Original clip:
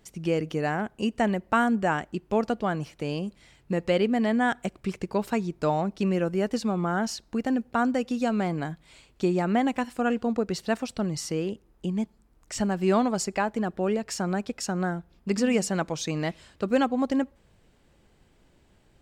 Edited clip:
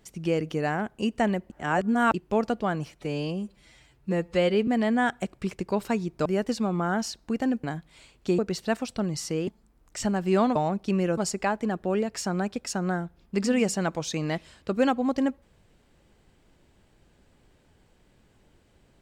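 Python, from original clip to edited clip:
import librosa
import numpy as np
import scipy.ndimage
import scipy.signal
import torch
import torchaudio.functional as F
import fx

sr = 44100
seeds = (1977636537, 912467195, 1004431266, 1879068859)

y = fx.edit(x, sr, fx.reverse_span(start_s=1.5, length_s=0.64),
    fx.stretch_span(start_s=2.95, length_s=1.15, factor=1.5),
    fx.move(start_s=5.68, length_s=0.62, to_s=13.11),
    fx.cut(start_s=7.68, length_s=0.9),
    fx.cut(start_s=9.33, length_s=1.06),
    fx.cut(start_s=11.48, length_s=0.55), tone=tone)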